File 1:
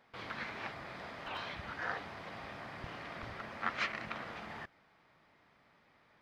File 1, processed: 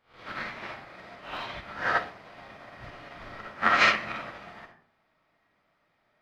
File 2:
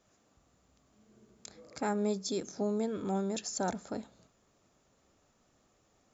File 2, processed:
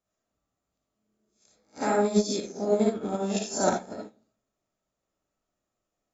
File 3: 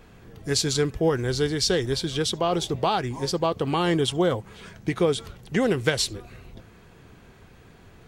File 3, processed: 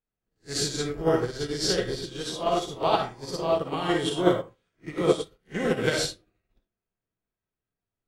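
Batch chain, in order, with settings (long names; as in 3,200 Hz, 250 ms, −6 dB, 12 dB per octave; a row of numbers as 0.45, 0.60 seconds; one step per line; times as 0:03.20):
peak hold with a rise ahead of every peak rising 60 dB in 0.37 s
comb and all-pass reverb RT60 0.54 s, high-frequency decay 0.5×, pre-delay 15 ms, DRR −2 dB
expander for the loud parts 2.5 to 1, over −43 dBFS
loudness normalisation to −27 LKFS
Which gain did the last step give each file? +12.0, +8.0, −1.0 decibels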